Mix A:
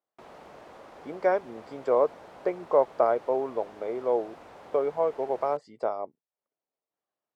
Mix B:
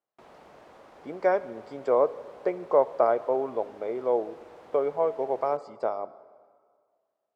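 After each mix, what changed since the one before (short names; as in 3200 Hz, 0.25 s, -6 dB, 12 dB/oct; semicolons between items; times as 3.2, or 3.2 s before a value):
background -3.5 dB; reverb: on, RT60 1.9 s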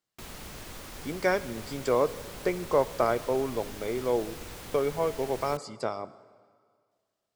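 speech -5.0 dB; master: remove band-pass 670 Hz, Q 1.4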